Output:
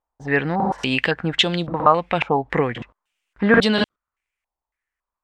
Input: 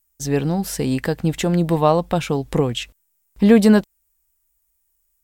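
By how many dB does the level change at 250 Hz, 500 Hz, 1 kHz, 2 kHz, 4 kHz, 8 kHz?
−5.5, −2.0, +4.5, +9.0, +7.5, −10.0 decibels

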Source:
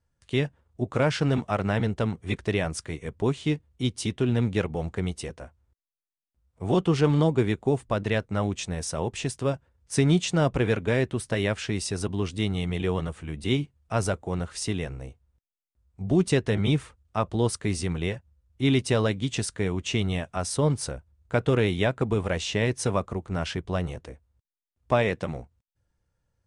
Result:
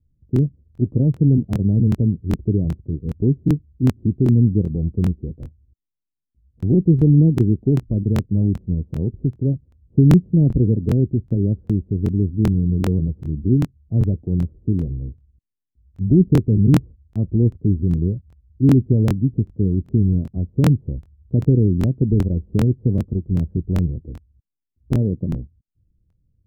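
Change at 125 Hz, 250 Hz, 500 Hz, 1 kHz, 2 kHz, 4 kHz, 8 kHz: +11.0 dB, +9.0 dB, −1.0 dB, −8.5 dB, below −10 dB, below −10 dB, below −10 dB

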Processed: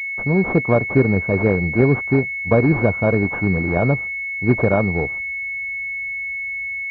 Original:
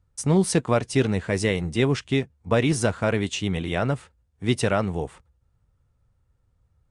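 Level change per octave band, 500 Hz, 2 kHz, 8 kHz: +5.5 dB, +12.0 dB, below −25 dB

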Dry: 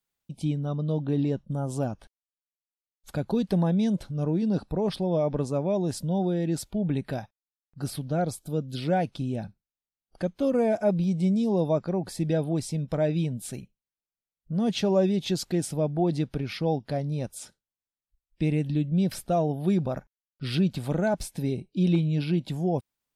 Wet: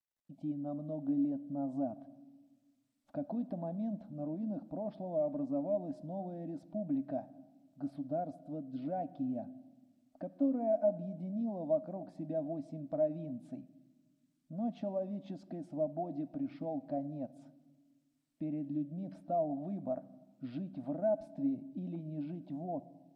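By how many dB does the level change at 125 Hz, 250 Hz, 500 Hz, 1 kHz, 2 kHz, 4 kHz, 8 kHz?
−18.5 dB, −10.0 dB, −8.5 dB, −9.0 dB, below −20 dB, below −25 dB, below −35 dB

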